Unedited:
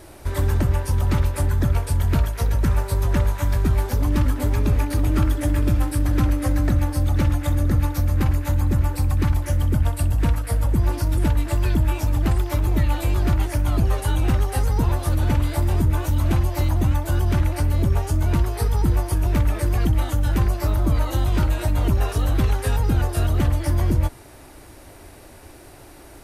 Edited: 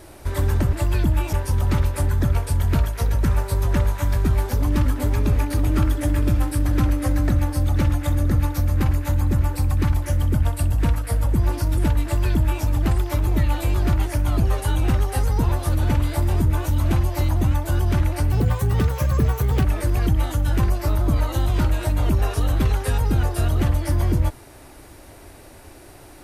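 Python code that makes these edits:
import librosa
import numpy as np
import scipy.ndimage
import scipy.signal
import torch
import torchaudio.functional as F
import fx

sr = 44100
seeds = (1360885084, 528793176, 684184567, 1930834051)

y = fx.edit(x, sr, fx.duplicate(start_s=11.44, length_s=0.6, to_s=0.73),
    fx.speed_span(start_s=17.72, length_s=1.71, speed=1.29), tone=tone)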